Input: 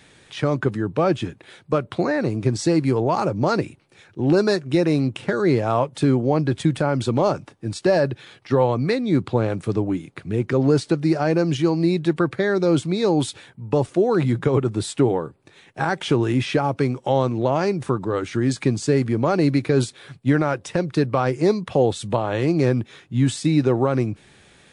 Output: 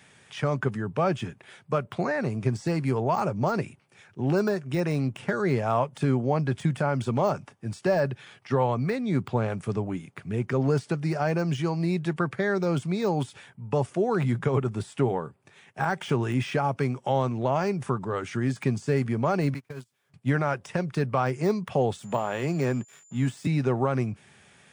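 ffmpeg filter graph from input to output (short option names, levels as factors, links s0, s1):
-filter_complex "[0:a]asettb=1/sr,asplit=3[s0][s1][s2];[s0]atrim=end=19.544[s3];[s1]atrim=start=19.54:end=20.14,asetpts=PTS-STARTPTS,afade=t=in:d=0.004:c=qsin,afade=t=out:st=0.596:d=0.004:c=qsin,aeval=exprs='val(0)+0.5*0.0335*sgn(val(0))':c=same,acrossover=split=140|1100[s4][s5][s6];[s4]acompressor=threshold=0.0178:ratio=4[s7];[s5]acompressor=threshold=0.0316:ratio=4[s8];[s6]acompressor=threshold=0.0126:ratio=4[s9];[s7][s8][s9]amix=inputs=3:normalize=0,agate=range=0.0251:threshold=0.0447:ratio=16:release=100:detection=peak[s10];[s2]atrim=start=20.136[s11];[s3][s10]acrossfade=d=0.004:c1=hsin:c2=qsin[s12];[s12][s11]acrossfade=d=0.004:c1=qsin:c2=hsin,asettb=1/sr,asplit=3[s13][s14][s15];[s13]atrim=end=21.994[s16];[s14]atrim=start=21.99:end=23.47,asetpts=PTS-STARTPTS,afade=t=in:d=0.004:c=qsin,afade=t=out:st=1.476:d=0.004:c=qsin,aeval=exprs='sgn(val(0))*max(abs(val(0))-0.00501,0)':c=same,highpass=f=130:w=0.5412,highpass=f=130:w=1.3066,aeval=exprs='val(0)+0.00282*sin(2*PI*7100*n/s)':c=same[s17];[s15]atrim=start=23.466[s18];[s16][s17]acrossfade=d=0.004:c1=hsin:c2=qsin[s19];[s19][s18]acrossfade=d=0.004:c1=qsin:c2=hsin,highpass=99,deesser=0.85,equalizer=f=315:t=o:w=0.33:g=-12,equalizer=f=500:t=o:w=0.33:g=-5,equalizer=f=4000:t=o:w=0.33:g=-8,volume=0.75"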